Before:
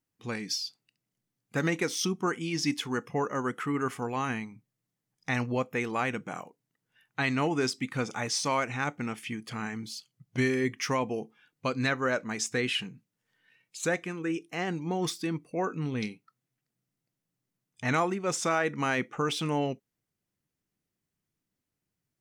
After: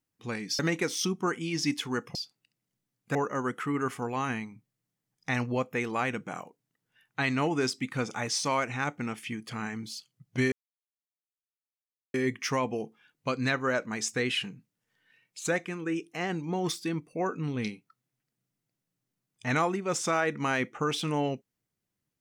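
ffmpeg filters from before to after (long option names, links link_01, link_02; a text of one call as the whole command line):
ffmpeg -i in.wav -filter_complex "[0:a]asplit=5[link_01][link_02][link_03][link_04][link_05];[link_01]atrim=end=0.592[link_06];[link_02]atrim=start=1.588:end=3.152[link_07];[link_03]atrim=start=0.588:end=1.592[link_08];[link_04]atrim=start=3.148:end=10.52,asetpts=PTS-STARTPTS,afade=type=out:start_time=7.368:duration=0.004:curve=hsin,apad=pad_dur=1.62[link_09];[link_05]atrim=start=10.52,asetpts=PTS-STARTPTS,afade=type=in:duration=0.004:curve=hsin[link_10];[link_06][link_07]acrossfade=duration=0.004:curve1=hsin:curve2=hsin[link_11];[link_11][link_08]acrossfade=duration=0.004:curve1=hsin:curve2=hsin[link_12];[link_09][link_10]concat=n=2:v=0:a=1[link_13];[link_12][link_13]acrossfade=duration=0.004:curve1=hsin:curve2=hsin" out.wav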